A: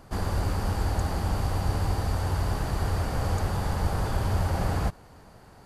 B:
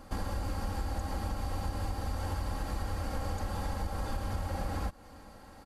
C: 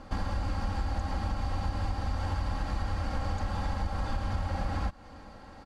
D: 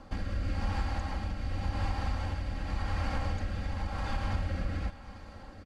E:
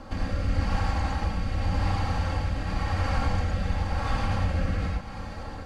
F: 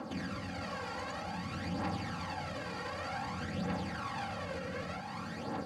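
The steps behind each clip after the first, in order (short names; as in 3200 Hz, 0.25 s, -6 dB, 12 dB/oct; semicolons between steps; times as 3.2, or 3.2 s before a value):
comb 3.7 ms, depth 65%; compressor, threshold -29 dBFS, peak gain reduction 10.5 dB; gain -1.5 dB
dynamic EQ 420 Hz, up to -7 dB, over -58 dBFS, Q 2; LPF 5200 Hz 12 dB/oct; gain +3.5 dB
dynamic EQ 2300 Hz, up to +6 dB, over -58 dBFS, Q 1.5; rotary speaker horn 0.9 Hz; tapped delay 0.236/0.828 s -17.5/-17.5 dB
in parallel at +2 dB: compressor, threshold -40 dBFS, peak gain reduction 13.5 dB; on the sum: non-linear reverb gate 0.13 s rising, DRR -2 dB
HPF 140 Hz 24 dB/oct; limiter -30 dBFS, peak gain reduction 9.5 dB; phaser 0.54 Hz, delay 2.2 ms, feedback 53%; gain -2 dB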